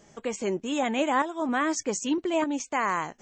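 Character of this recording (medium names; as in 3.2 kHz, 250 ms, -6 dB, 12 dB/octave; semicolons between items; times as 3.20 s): tremolo saw up 0.82 Hz, depth 55%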